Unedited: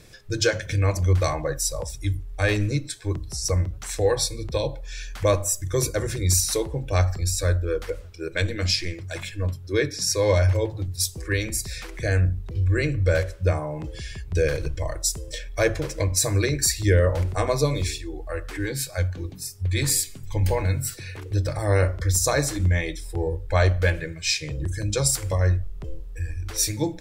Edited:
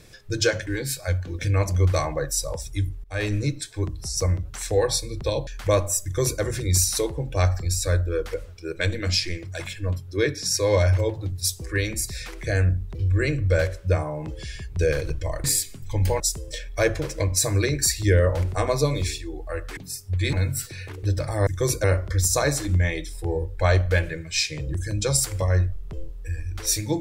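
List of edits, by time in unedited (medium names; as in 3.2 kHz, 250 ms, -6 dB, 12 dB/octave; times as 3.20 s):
2.32–2.77 s: fade in equal-power, from -22.5 dB
4.75–5.03 s: delete
5.60–5.97 s: copy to 21.75 s
18.57–19.29 s: move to 0.67 s
19.85–20.61 s: move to 15.00 s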